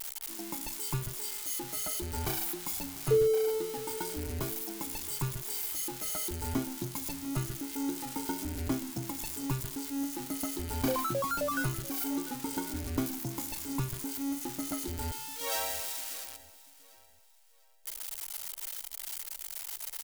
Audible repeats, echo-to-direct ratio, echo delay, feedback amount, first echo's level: 2, -18.5 dB, 694 ms, 34%, -19.0 dB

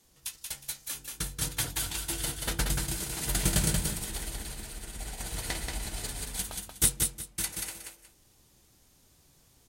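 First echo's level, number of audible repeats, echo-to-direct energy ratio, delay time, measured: -4.0 dB, 2, -4.0 dB, 182 ms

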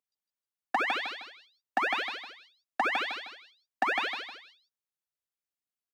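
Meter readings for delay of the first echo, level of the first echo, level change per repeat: 155 ms, -5.0 dB, -9.0 dB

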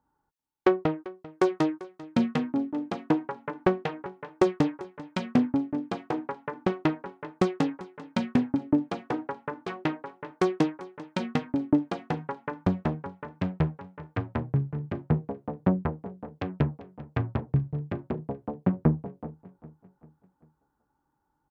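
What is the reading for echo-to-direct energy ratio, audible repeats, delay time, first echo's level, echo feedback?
-17.5 dB, 3, 393 ms, -18.5 dB, 46%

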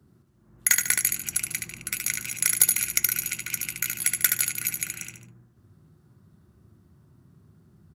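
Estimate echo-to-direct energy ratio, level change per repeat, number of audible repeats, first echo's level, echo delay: -4.0 dB, -8.0 dB, 3, -4.5 dB, 73 ms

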